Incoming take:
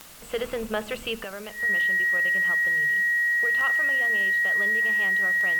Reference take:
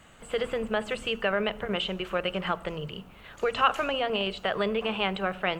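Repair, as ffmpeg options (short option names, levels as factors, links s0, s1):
-af "adeclick=t=4,bandreject=f=1900:w=30,afwtdn=0.0045,asetnsamples=n=441:p=0,asendcmd='1.24 volume volume 10.5dB',volume=1"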